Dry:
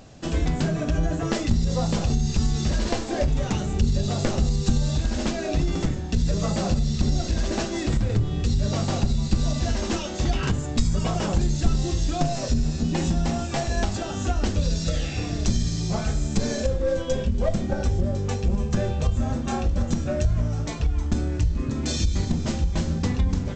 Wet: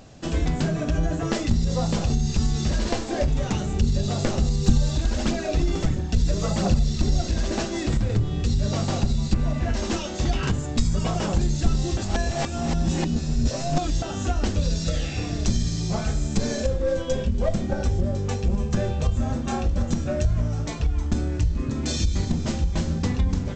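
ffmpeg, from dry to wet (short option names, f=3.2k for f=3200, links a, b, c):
-filter_complex "[0:a]asplit=3[a][b][c];[a]afade=t=out:st=4.61:d=0.02[d];[b]aphaser=in_gain=1:out_gain=1:delay=3.4:decay=0.36:speed=1.5:type=triangular,afade=t=in:st=4.61:d=0.02,afade=t=out:st=7.2:d=0.02[e];[c]afade=t=in:st=7.2:d=0.02[f];[d][e][f]amix=inputs=3:normalize=0,asettb=1/sr,asplit=3[g][h][i];[g]atrim=end=9.344[j];[h]atrim=start=9.34:end=9.74,asetpts=PTS-STARTPTS,afade=t=in:d=0.004:c=qsin,afade=t=out:st=0.396:d=0.004:c=qsin,highshelf=f=3.1k:t=q:w=1.5:g=-10.5[k];[i]atrim=start=9.736[l];[j][k]acrossfade=d=0.004:c1=hsin:c2=qsin[m];[m][l]acrossfade=d=0.004:c1=qsin:c2=hsin,asplit=3[n][o][p];[n]atrim=end=11.972[q];[o]atrim=start=11.968:end=14.022,asetpts=PTS-STARTPTS,areverse[r];[p]atrim=start=14.018[s];[q][r]acrossfade=d=0.004:c1=hsin:c2=hsin[t];[t][s]acrossfade=d=0.004:c1=hsin:c2=hsin"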